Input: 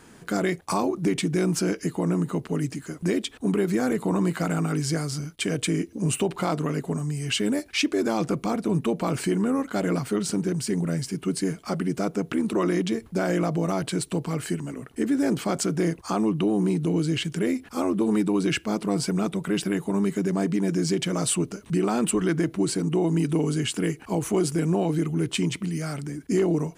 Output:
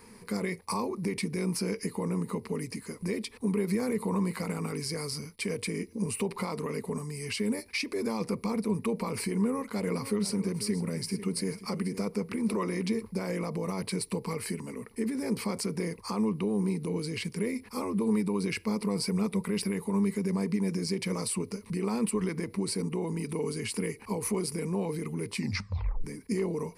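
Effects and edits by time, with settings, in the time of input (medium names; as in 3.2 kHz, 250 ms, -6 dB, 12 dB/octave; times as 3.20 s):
9.41–13.05 s: delay 492 ms -15.5 dB
25.35 s: tape stop 0.69 s
whole clip: treble shelf 11 kHz +7.5 dB; peak limiter -19.5 dBFS; rippled EQ curve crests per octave 0.89, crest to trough 12 dB; trim -4.5 dB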